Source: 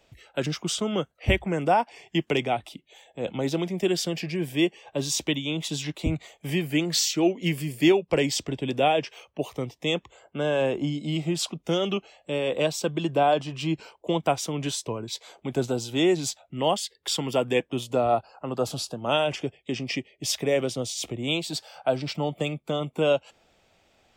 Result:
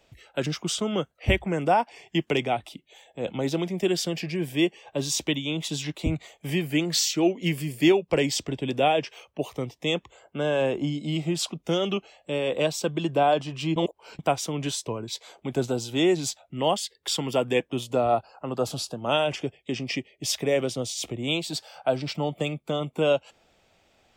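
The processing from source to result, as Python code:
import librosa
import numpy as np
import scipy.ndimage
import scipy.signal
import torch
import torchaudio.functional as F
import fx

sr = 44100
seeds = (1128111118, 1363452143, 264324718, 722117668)

y = fx.edit(x, sr, fx.reverse_span(start_s=13.76, length_s=0.43), tone=tone)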